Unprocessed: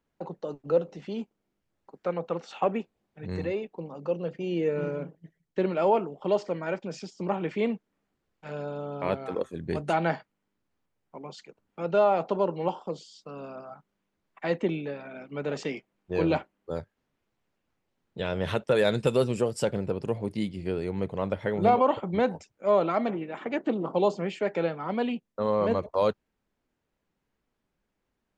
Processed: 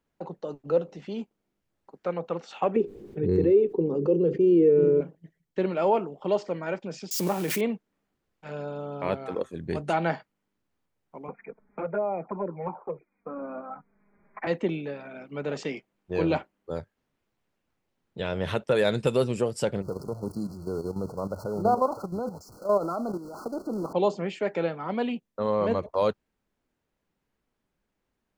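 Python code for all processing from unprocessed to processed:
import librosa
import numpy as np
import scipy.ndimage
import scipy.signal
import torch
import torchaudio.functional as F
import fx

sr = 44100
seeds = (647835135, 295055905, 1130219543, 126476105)

y = fx.chain(x, sr, fx.curve_eq(hz=(240.0, 410.0, 640.0), db=(0, 13, -12)),
    fx.env_flatten(amount_pct=50), at=(2.76, 5.01))
y = fx.chain(y, sr, fx.crossing_spikes(level_db=-30.0),
    fx.pre_swell(db_per_s=36.0), at=(7.11, 7.61))
y = fx.chain(y, sr, fx.brickwall_lowpass(high_hz=2500.0),
    fx.env_flanger(rest_ms=5.0, full_db=-18.5),
    fx.band_squash(depth_pct=70), at=(11.28, 14.47))
y = fx.chain(y, sr, fx.zero_step(step_db=-37.5),
    fx.level_steps(step_db=10),
    fx.brickwall_bandstop(low_hz=1500.0, high_hz=4100.0), at=(19.82, 23.93))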